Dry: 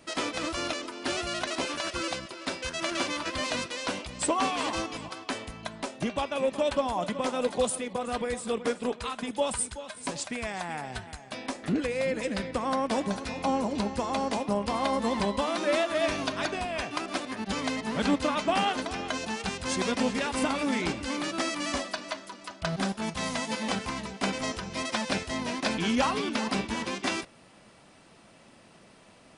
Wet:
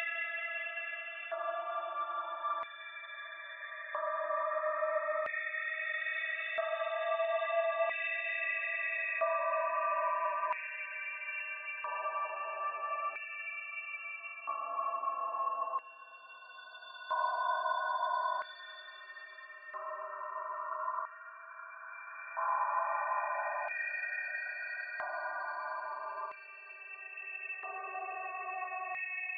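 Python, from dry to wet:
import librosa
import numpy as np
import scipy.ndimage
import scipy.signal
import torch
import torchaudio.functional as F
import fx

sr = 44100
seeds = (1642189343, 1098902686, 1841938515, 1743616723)

y = scipy.signal.sosfilt(scipy.signal.butter(4, 380.0, 'highpass', fs=sr, output='sos'), x)
y = fx.high_shelf(y, sr, hz=7100.0, db=-9.5)
y = fx.spec_topn(y, sr, count=16)
y = fx.paulstretch(y, sr, seeds[0], factor=39.0, window_s=0.1, from_s=15.83)
y = fx.filter_lfo_highpass(y, sr, shape='square', hz=0.38, low_hz=990.0, high_hz=2100.0, q=3.9)
y = y * 10.0 ** (-5.0 / 20.0)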